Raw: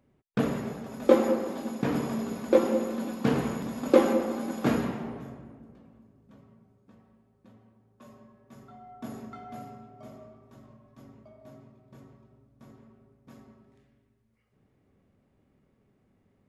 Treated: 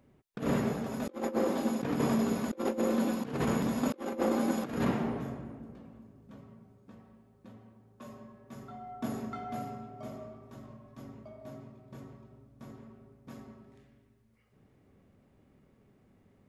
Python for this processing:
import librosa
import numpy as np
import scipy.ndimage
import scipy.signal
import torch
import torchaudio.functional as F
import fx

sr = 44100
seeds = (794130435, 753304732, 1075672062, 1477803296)

y = fx.over_compress(x, sr, threshold_db=-30.0, ratio=-0.5)